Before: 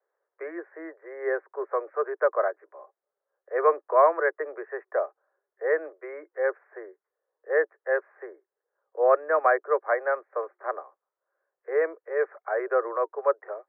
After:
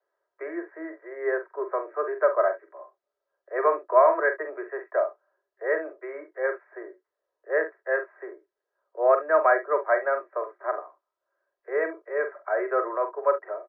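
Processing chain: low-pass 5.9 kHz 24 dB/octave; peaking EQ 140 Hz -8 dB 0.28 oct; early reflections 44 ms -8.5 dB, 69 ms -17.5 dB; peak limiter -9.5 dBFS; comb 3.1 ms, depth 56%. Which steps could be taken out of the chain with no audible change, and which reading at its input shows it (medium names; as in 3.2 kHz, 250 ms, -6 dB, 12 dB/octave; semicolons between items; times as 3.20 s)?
low-pass 5.9 kHz: input has nothing above 2.2 kHz; peaking EQ 140 Hz: input has nothing below 290 Hz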